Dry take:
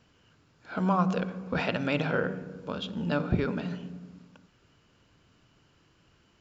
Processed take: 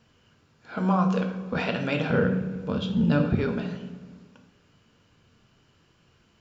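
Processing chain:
0:02.10–0:03.25: parametric band 100 Hz +12 dB 2.5 octaves
coupled-rooms reverb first 0.53 s, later 2.2 s, DRR 4 dB

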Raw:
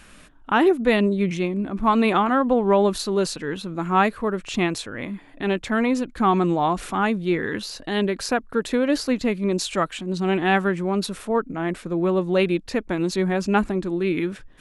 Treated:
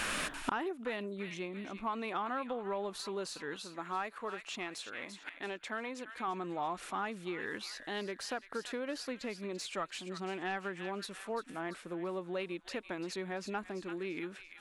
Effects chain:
high-shelf EQ 5,100 Hz +10.5 dB
delay with a high-pass on its return 340 ms, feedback 39%, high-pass 1,700 Hz, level −9.5 dB
downward compressor, threshold −21 dBFS, peak gain reduction 9 dB
gate with flip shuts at −31 dBFS, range −26 dB
0:03.56–0:06.28: low-shelf EQ 200 Hz −10 dB
mid-hump overdrive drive 19 dB, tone 2,000 Hz, clips at −24 dBFS
level +5.5 dB

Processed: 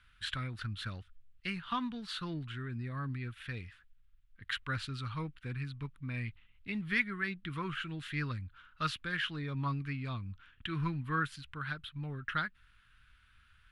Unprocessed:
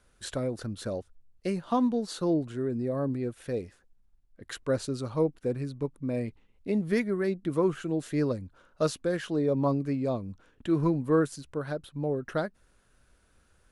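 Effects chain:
drawn EQ curve 110 Hz 0 dB, 570 Hz −25 dB, 1,300 Hz +4 dB, 3,200 Hz +8 dB, 6,300 Hz −13 dB, 12,000 Hz −11 dB

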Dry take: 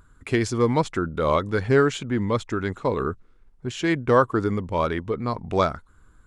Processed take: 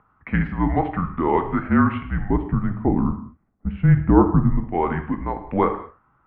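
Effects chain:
0:02.29–0:04.60: tilt shelving filter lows +9.5 dB, about 690 Hz
reverb whose tail is shaped and stops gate 250 ms falling, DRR 6 dB
single-sideband voice off tune −180 Hz 220–2,500 Hz
level +1.5 dB

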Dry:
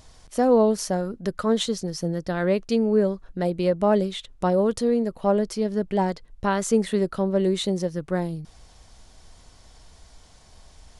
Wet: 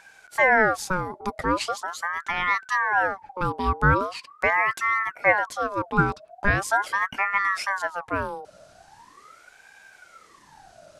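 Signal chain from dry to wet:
parametric band 800 Hz +12 dB 0.34 octaves
ring modulator whose carrier an LFO sweeps 1,100 Hz, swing 45%, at 0.41 Hz

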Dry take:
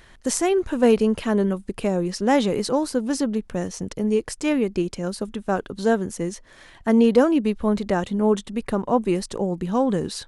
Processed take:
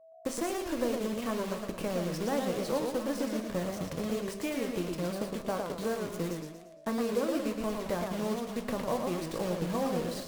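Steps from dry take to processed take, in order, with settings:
bass and treble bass +1 dB, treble −5 dB
downward compressor 6 to 1, threshold −24 dBFS, peak gain reduction 12.5 dB
bit reduction 6 bits
steady tone 650 Hz −50 dBFS
hollow resonant body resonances 560/1,100 Hz, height 8 dB
harmonic generator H 7 −28 dB, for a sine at −11.5 dBFS
rectangular room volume 190 cubic metres, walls furnished, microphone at 0.62 metres
feedback echo with a swinging delay time 115 ms, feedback 46%, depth 180 cents, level −4.5 dB
level −6.5 dB

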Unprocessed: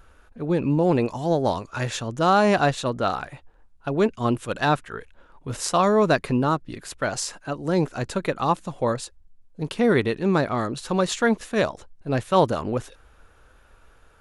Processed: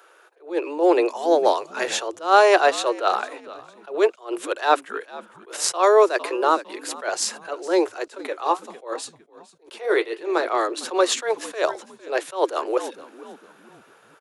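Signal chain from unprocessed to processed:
Butterworth high-pass 330 Hz 96 dB per octave
0:08.18–0:10.47: flanger 1.5 Hz, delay 7.5 ms, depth 8.1 ms, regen −54%
echo with shifted repeats 455 ms, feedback 33%, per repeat −71 Hz, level −20 dB
level that may rise only so fast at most 190 dB per second
level +5.5 dB

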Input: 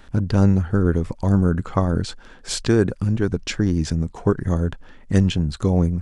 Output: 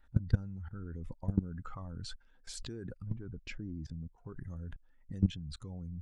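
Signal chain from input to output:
spectral dynamics exaggerated over time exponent 1.5
0:03.02–0:04.18: low-pass filter 1,000 Hz 6 dB per octave
brickwall limiter −14.5 dBFS, peak gain reduction 9 dB
output level in coarse steps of 21 dB
phase shifter 0.8 Hz, delay 1 ms, feedback 38%
level −2.5 dB

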